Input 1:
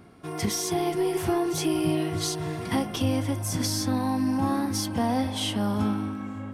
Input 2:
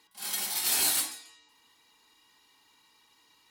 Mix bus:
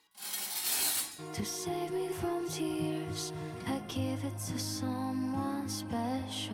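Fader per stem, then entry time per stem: −9.0, −5.0 decibels; 0.95, 0.00 seconds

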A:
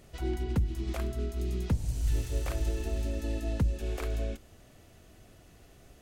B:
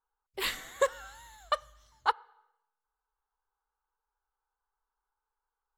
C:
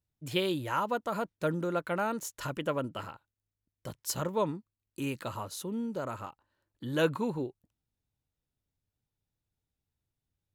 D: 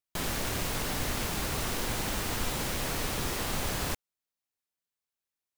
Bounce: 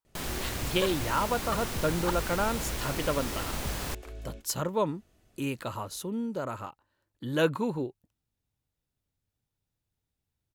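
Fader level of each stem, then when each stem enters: −10.0, −8.0, +2.0, −3.0 decibels; 0.05, 0.00, 0.40, 0.00 seconds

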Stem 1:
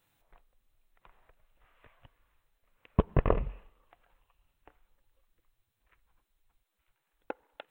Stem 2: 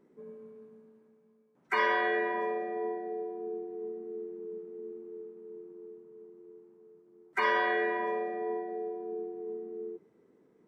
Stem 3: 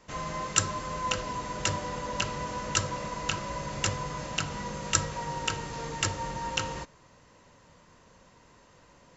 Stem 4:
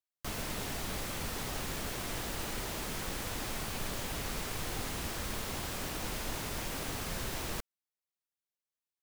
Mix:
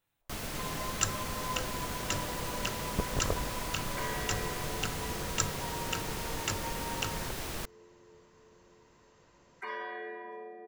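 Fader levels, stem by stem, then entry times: −8.0, −12.0, −5.5, −0.5 decibels; 0.00, 2.25, 0.45, 0.05 seconds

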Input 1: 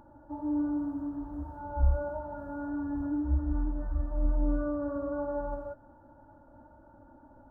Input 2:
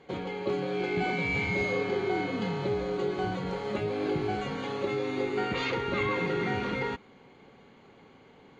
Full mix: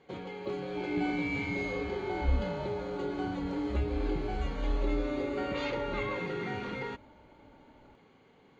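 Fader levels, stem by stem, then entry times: −3.5, −6.0 decibels; 0.45, 0.00 seconds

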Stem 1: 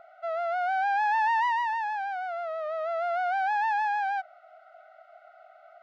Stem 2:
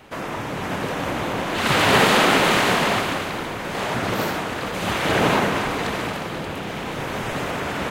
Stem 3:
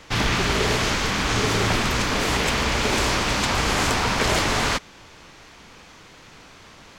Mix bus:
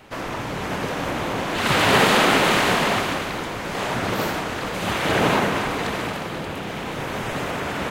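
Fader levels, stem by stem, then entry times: muted, −0.5 dB, −18.0 dB; muted, 0.00 s, 0.00 s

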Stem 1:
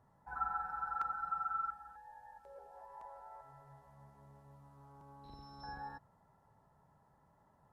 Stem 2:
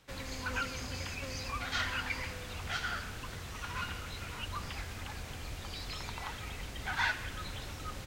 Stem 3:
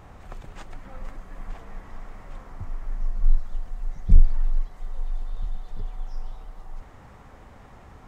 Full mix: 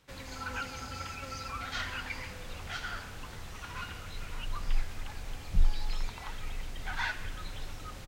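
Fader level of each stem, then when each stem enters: −6.5, −2.5, −11.0 decibels; 0.00, 0.00, 1.45 seconds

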